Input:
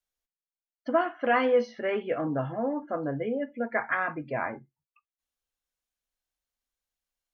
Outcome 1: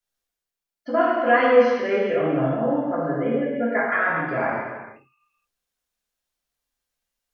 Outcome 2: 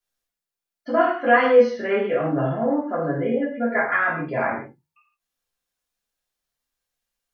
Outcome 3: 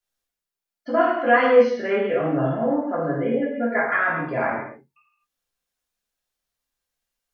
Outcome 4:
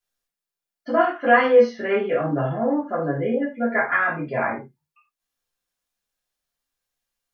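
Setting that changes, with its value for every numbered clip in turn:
non-linear reverb, gate: 0.5, 0.19, 0.28, 0.12 s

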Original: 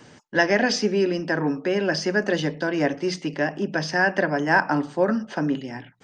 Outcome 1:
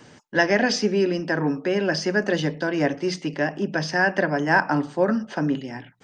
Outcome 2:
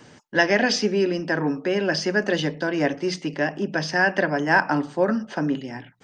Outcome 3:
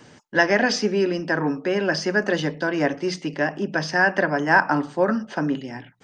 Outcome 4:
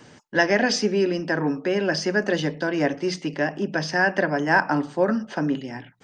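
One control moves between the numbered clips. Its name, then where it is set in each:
dynamic EQ, frequency: 110, 3200, 1200, 8900 Hz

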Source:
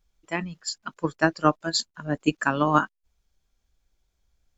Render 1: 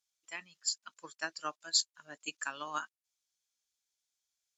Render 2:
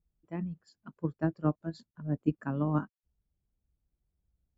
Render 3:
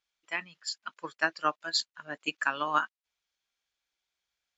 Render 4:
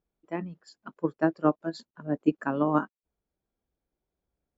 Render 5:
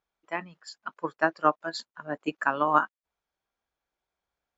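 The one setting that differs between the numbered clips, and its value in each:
band-pass, frequency: 7900, 120, 2700, 350, 1000 Hz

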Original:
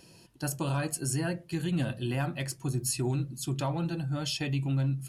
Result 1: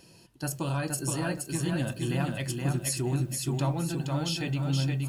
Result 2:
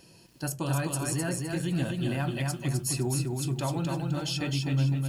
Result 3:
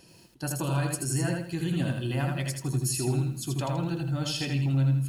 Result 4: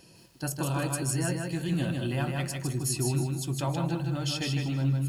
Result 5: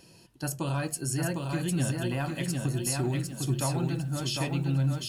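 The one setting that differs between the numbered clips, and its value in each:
lo-fi delay, time: 471, 257, 81, 156, 754 ms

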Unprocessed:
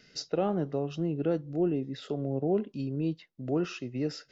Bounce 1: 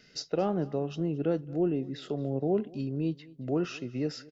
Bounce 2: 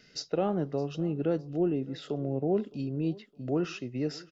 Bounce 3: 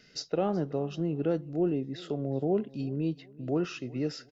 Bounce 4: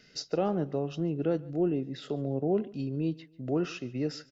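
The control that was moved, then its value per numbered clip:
feedback echo, time: 0.224, 0.613, 0.373, 0.143 s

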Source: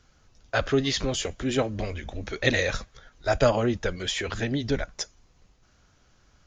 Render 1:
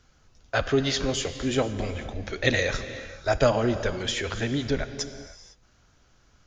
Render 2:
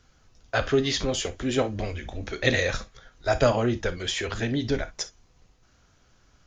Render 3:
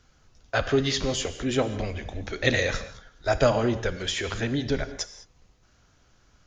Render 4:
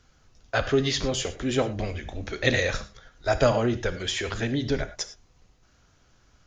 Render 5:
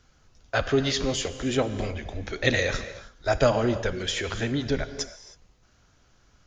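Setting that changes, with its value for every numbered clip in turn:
non-linear reverb, gate: 530, 80, 230, 130, 340 ms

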